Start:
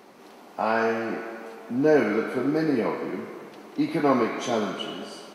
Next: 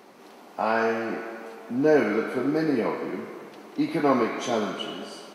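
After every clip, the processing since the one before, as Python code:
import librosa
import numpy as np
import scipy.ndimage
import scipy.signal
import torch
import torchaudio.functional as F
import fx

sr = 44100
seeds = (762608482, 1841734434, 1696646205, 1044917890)

y = fx.low_shelf(x, sr, hz=95.0, db=-5.0)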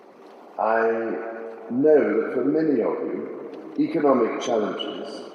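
y = fx.envelope_sharpen(x, sr, power=1.5)
y = fx.echo_filtered(y, sr, ms=524, feedback_pct=71, hz=990.0, wet_db=-19)
y = y * librosa.db_to_amplitude(3.0)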